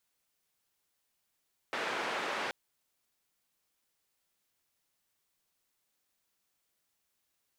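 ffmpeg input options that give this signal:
ffmpeg -f lavfi -i "anoisesrc=color=white:duration=0.78:sample_rate=44100:seed=1,highpass=frequency=320,lowpass=frequency=1900,volume=-19.7dB" out.wav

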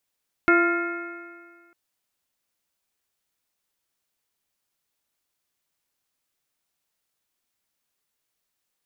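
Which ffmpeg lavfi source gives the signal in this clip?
ffmpeg -f lavfi -i "aevalsrc='0.141*pow(10,-3*t/1.75)*sin(2*PI*340.56*t)+0.0531*pow(10,-3*t/1.75)*sin(2*PI*684.47*t)+0.0224*pow(10,-3*t/1.75)*sin(2*PI*1035.04*t)+0.158*pow(10,-3*t/1.75)*sin(2*PI*1395.44*t)+0.0299*pow(10,-3*t/1.75)*sin(2*PI*1768.74*t)+0.075*pow(10,-3*t/1.75)*sin(2*PI*2157.78*t)+0.0188*pow(10,-3*t/1.75)*sin(2*PI*2565.22*t)':duration=1.25:sample_rate=44100" out.wav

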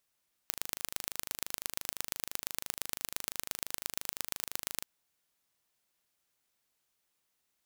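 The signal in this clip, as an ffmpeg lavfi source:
ffmpeg -f lavfi -i "aevalsrc='0.562*eq(mod(n,1703),0)*(0.5+0.5*eq(mod(n,5109),0))':duration=4.36:sample_rate=44100" out.wav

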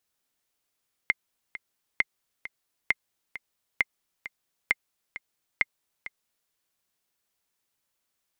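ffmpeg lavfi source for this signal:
ffmpeg -f lavfi -i "aevalsrc='pow(10,(-8-15*gte(mod(t,2*60/133),60/133))/20)*sin(2*PI*2100*mod(t,60/133))*exp(-6.91*mod(t,60/133)/0.03)':duration=5.41:sample_rate=44100" out.wav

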